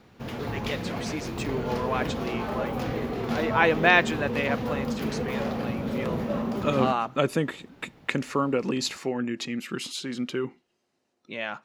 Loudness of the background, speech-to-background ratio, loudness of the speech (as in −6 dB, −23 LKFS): −31.0 LKFS, 2.5 dB, −28.5 LKFS